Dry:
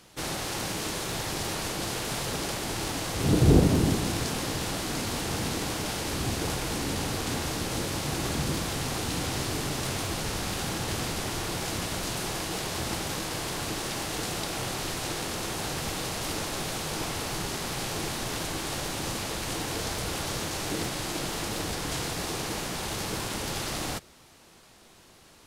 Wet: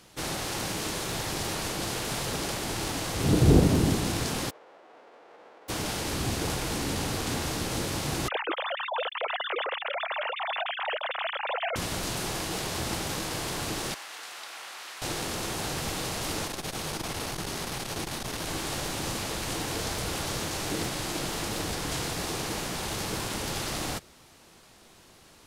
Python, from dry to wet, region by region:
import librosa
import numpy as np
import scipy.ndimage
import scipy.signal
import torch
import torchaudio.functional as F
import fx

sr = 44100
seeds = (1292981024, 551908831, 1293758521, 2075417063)

y = fx.envelope_flatten(x, sr, power=0.1, at=(4.49, 5.68), fade=0.02)
y = fx.ladder_bandpass(y, sr, hz=600.0, resonance_pct=40, at=(4.49, 5.68), fade=0.02)
y = fx.chain(y, sr, fx.sine_speech(),
    fx.highpass(hz=490.0, slope=12), at=(8.28, 11.76))
y = fx.chain(y, sr, fx.highpass(hz=1300.0, slope=12),
    fx.high_shelf(hz=3000.0, db=-11.5),
    fx.transformer_sat(knee_hz=1700.0), at=(13.94, 15.02))
y = fx.chain(y, sr, fx.notch(hz=7400.0, q=23.0),
    fx.transformer_sat(knee_hz=220.0), at=(16.47, 18.47))